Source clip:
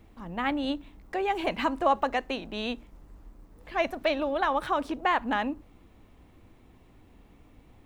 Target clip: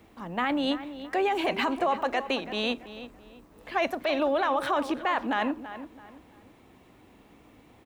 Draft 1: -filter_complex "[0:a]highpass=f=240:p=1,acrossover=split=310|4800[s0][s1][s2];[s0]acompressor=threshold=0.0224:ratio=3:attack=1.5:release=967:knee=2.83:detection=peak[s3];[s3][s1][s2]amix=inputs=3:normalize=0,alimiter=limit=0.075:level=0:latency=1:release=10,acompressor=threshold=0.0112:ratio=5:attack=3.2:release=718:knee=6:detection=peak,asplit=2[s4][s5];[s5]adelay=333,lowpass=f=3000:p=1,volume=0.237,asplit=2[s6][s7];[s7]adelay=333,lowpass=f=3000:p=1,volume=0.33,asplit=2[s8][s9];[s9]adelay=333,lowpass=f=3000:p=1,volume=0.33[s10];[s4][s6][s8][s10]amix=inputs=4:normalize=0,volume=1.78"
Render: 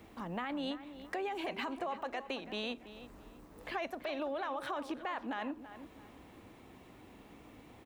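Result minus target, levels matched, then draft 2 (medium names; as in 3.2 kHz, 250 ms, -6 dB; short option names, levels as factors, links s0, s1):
compression: peak gain reduction +12.5 dB
-filter_complex "[0:a]highpass=f=240:p=1,acrossover=split=310|4800[s0][s1][s2];[s0]acompressor=threshold=0.0224:ratio=3:attack=1.5:release=967:knee=2.83:detection=peak[s3];[s3][s1][s2]amix=inputs=3:normalize=0,alimiter=limit=0.075:level=0:latency=1:release=10,asplit=2[s4][s5];[s5]adelay=333,lowpass=f=3000:p=1,volume=0.237,asplit=2[s6][s7];[s7]adelay=333,lowpass=f=3000:p=1,volume=0.33,asplit=2[s8][s9];[s9]adelay=333,lowpass=f=3000:p=1,volume=0.33[s10];[s4][s6][s8][s10]amix=inputs=4:normalize=0,volume=1.78"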